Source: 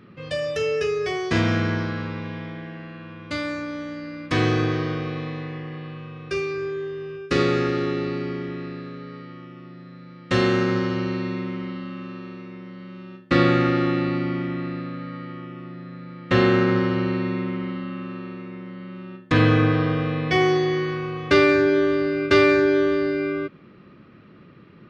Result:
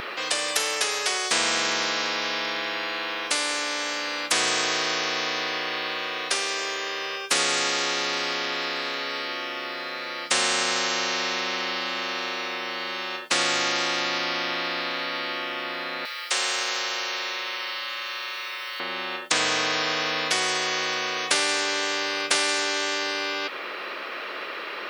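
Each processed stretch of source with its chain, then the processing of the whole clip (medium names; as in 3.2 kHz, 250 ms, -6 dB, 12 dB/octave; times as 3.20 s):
16.05–18.80 s: differentiator + tape noise reduction on one side only encoder only
whole clip: high-pass 550 Hz 24 dB/octave; treble shelf 3.5 kHz +8 dB; spectrum-flattening compressor 4:1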